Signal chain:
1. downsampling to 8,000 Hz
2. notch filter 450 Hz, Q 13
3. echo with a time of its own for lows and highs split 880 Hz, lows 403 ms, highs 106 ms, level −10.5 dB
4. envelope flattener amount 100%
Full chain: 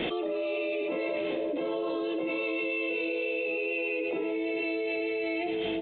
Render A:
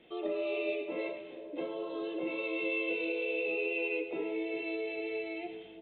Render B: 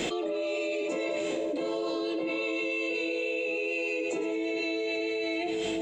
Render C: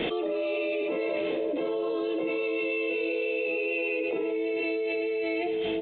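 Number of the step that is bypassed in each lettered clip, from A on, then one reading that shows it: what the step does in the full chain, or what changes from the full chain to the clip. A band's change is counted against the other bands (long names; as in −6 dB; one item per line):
4, change in momentary loudness spread +6 LU
1, 4 kHz band +3.0 dB
2, 500 Hz band +2.5 dB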